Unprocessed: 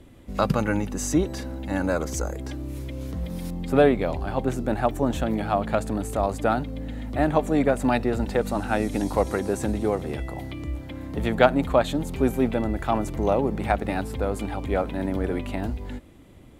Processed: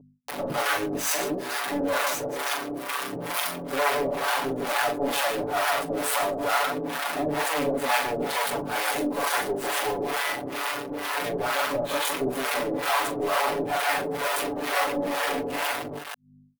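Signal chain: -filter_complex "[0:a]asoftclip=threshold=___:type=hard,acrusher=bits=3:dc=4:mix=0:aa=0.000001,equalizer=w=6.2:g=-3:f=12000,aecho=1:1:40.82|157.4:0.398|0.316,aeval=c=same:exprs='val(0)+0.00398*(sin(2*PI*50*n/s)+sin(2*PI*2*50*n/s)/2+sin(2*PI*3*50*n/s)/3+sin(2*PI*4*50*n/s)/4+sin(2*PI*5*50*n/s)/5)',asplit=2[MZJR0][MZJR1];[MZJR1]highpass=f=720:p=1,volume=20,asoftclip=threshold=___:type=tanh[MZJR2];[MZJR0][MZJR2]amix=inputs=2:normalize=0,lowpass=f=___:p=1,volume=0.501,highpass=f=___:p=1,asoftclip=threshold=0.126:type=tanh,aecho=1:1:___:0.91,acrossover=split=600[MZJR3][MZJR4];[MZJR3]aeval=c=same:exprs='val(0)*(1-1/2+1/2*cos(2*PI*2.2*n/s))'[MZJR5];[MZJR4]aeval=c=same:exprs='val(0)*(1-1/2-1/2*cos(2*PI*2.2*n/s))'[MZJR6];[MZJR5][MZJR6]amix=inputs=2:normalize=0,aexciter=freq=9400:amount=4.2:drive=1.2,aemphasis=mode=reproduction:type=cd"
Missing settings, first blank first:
0.2, 0.335, 7500, 440, 7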